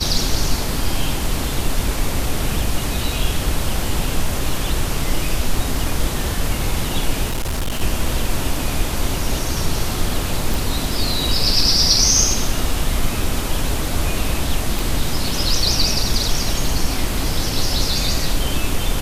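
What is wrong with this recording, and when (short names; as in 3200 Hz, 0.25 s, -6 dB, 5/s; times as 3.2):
7.28–7.82 clipped -17.5 dBFS
10.54 pop
14.79 pop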